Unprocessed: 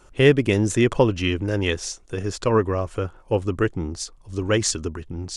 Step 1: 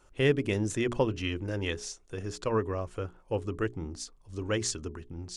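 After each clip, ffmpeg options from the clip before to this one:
ffmpeg -i in.wav -af "bandreject=frequency=60:width_type=h:width=6,bandreject=frequency=120:width_type=h:width=6,bandreject=frequency=180:width_type=h:width=6,bandreject=frequency=240:width_type=h:width=6,bandreject=frequency=300:width_type=h:width=6,bandreject=frequency=360:width_type=h:width=6,bandreject=frequency=420:width_type=h:width=6,volume=-9dB" out.wav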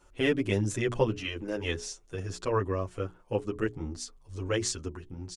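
ffmpeg -i in.wav -filter_complex "[0:a]asplit=2[link_01][link_02];[link_02]adelay=8.6,afreqshift=0.43[link_03];[link_01][link_03]amix=inputs=2:normalize=1,volume=3.5dB" out.wav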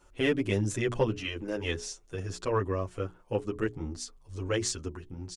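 ffmpeg -i in.wav -af "asoftclip=type=tanh:threshold=-13dB" out.wav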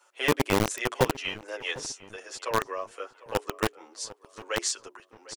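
ffmpeg -i in.wav -filter_complex "[0:a]acrossover=split=520|800[link_01][link_02][link_03];[link_01]acrusher=bits=3:mix=0:aa=0.000001[link_04];[link_04][link_02][link_03]amix=inputs=3:normalize=0,asplit=2[link_05][link_06];[link_06]adelay=751,lowpass=frequency=2100:poles=1,volume=-18dB,asplit=2[link_07][link_08];[link_08]adelay=751,lowpass=frequency=2100:poles=1,volume=0.39,asplit=2[link_09][link_10];[link_10]adelay=751,lowpass=frequency=2100:poles=1,volume=0.39[link_11];[link_05][link_07][link_09][link_11]amix=inputs=4:normalize=0,volume=3.5dB" out.wav

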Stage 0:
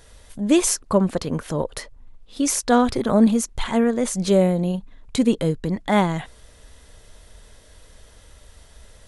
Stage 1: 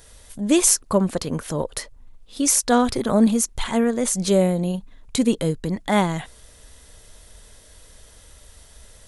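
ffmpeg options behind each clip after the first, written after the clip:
ffmpeg -i in.wav -af "highshelf=frequency=5700:gain=9,volume=-1dB" out.wav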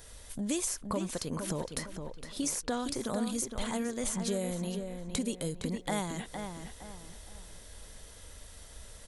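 ffmpeg -i in.wav -filter_complex "[0:a]acrossover=split=2200|4900[link_01][link_02][link_03];[link_01]acompressor=threshold=-31dB:ratio=4[link_04];[link_02]acompressor=threshold=-46dB:ratio=4[link_05];[link_03]acompressor=threshold=-34dB:ratio=4[link_06];[link_04][link_05][link_06]amix=inputs=3:normalize=0,asplit=2[link_07][link_08];[link_08]adelay=462,lowpass=frequency=3400:poles=1,volume=-6.5dB,asplit=2[link_09][link_10];[link_10]adelay=462,lowpass=frequency=3400:poles=1,volume=0.36,asplit=2[link_11][link_12];[link_12]adelay=462,lowpass=frequency=3400:poles=1,volume=0.36,asplit=2[link_13][link_14];[link_14]adelay=462,lowpass=frequency=3400:poles=1,volume=0.36[link_15];[link_07][link_09][link_11][link_13][link_15]amix=inputs=5:normalize=0,volume=-2.5dB" out.wav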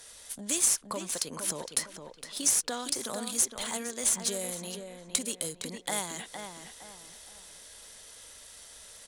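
ffmpeg -i in.wav -filter_complex "[0:a]aemphasis=mode=production:type=riaa,acrossover=split=230[link_01][link_02];[link_02]adynamicsmooth=sensitivity=6:basefreq=5500[link_03];[link_01][link_03]amix=inputs=2:normalize=0" out.wav

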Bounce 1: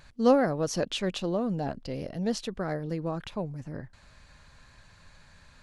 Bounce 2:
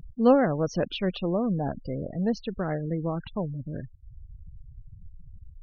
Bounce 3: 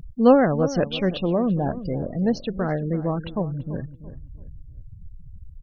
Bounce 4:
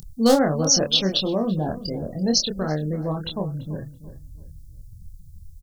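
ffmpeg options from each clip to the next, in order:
ffmpeg -i in.wav -af "bass=frequency=250:gain=3,treble=frequency=4000:gain=-9,afftfilt=real='re*gte(hypot(re,im),0.0126)':imag='im*gte(hypot(re,im),0.0126)':win_size=1024:overlap=0.75,acompressor=mode=upward:threshold=-35dB:ratio=2.5,volume=1.5dB" out.wav
ffmpeg -i in.wav -filter_complex "[0:a]asplit=2[link_01][link_02];[link_02]adelay=336,lowpass=frequency=1100:poles=1,volume=-13dB,asplit=2[link_03][link_04];[link_04]adelay=336,lowpass=frequency=1100:poles=1,volume=0.35,asplit=2[link_05][link_06];[link_06]adelay=336,lowpass=frequency=1100:poles=1,volume=0.35[link_07];[link_01][link_03][link_05][link_07]amix=inputs=4:normalize=0,volume=4.5dB" out.wav
ffmpeg -i in.wav -filter_complex "[0:a]aeval=exprs='clip(val(0),-1,0.266)':channel_layout=same,aexciter=amount=14.1:drive=5.6:freq=3700,asplit=2[link_01][link_02];[link_02]adelay=26,volume=-4dB[link_03];[link_01][link_03]amix=inputs=2:normalize=0,volume=-3dB" out.wav

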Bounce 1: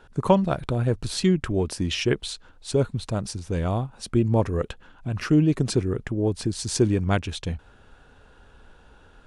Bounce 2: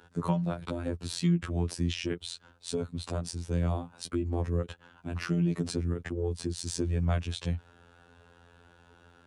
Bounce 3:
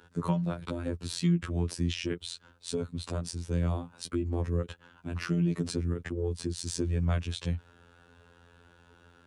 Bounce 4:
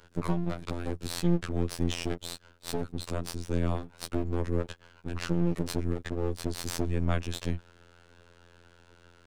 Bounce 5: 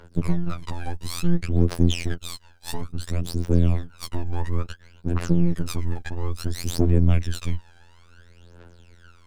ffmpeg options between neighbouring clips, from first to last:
ffmpeg -i in.wav -filter_complex "[0:a]afftfilt=real='hypot(re,im)*cos(PI*b)':imag='0':win_size=2048:overlap=0.75,highpass=58,acrossover=split=190[link_01][link_02];[link_02]acompressor=threshold=-32dB:ratio=4[link_03];[link_01][link_03]amix=inputs=2:normalize=0" out.wav
ffmpeg -i in.wav -af "equalizer=frequency=730:width_type=o:width=0.45:gain=-4.5" out.wav
ffmpeg -i in.wav -af "aeval=exprs='max(val(0),0)':channel_layout=same,volume=3.5dB" out.wav
ffmpeg -i in.wav -af "aphaser=in_gain=1:out_gain=1:delay=1.3:decay=0.76:speed=0.58:type=triangular" out.wav

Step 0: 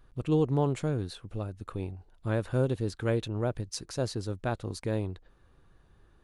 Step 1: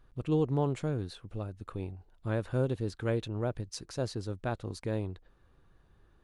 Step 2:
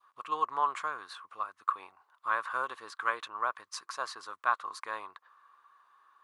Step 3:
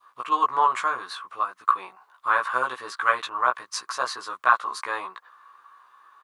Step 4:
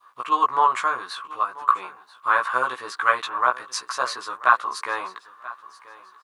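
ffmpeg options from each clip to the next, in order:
ffmpeg -i in.wav -af "highshelf=frequency=7900:gain=-5.5,volume=-2.5dB" out.wav
ffmpeg -i in.wav -af "highpass=frequency=1100:width_type=q:width=11,adynamicequalizer=threshold=0.00562:dfrequency=1600:dqfactor=1.4:tfrequency=1600:tqfactor=1.4:attack=5:release=100:ratio=0.375:range=3:mode=boostabove:tftype=bell" out.wav
ffmpeg -i in.wav -filter_complex "[0:a]asplit=2[link_01][link_02];[link_02]adelay=16,volume=-2dB[link_03];[link_01][link_03]amix=inputs=2:normalize=0,volume=7.5dB" out.wav
ffmpeg -i in.wav -af "aecho=1:1:985|1970:0.112|0.0281,volume=2dB" out.wav

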